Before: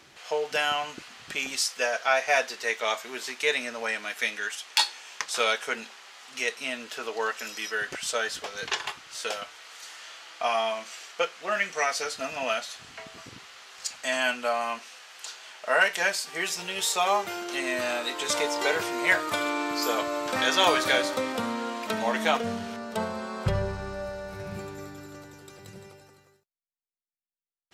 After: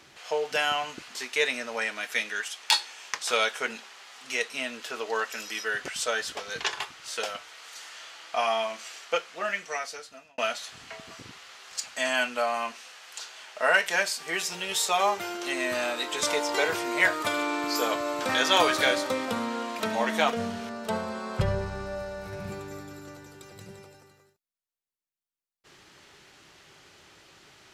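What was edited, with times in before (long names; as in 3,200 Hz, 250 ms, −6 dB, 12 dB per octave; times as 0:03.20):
0:01.15–0:03.22: remove
0:11.20–0:12.45: fade out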